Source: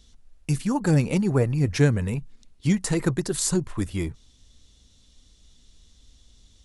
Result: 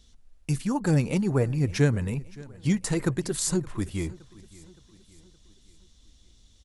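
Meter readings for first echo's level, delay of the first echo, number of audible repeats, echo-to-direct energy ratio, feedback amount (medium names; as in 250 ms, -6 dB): -21.5 dB, 568 ms, 3, -20.5 dB, 50%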